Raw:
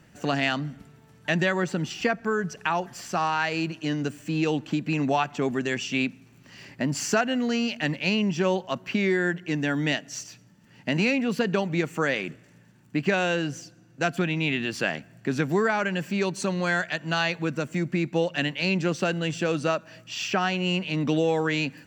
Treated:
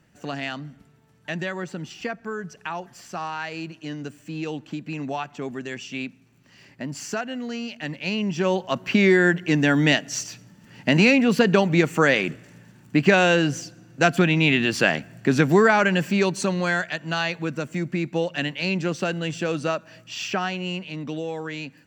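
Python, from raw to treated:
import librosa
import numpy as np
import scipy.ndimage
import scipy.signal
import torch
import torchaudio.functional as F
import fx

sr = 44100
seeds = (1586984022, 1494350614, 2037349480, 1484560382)

y = fx.gain(x, sr, db=fx.line((7.78, -5.5), (9.0, 7.0), (15.92, 7.0), (16.98, 0.0), (20.29, 0.0), (21.07, -7.0)))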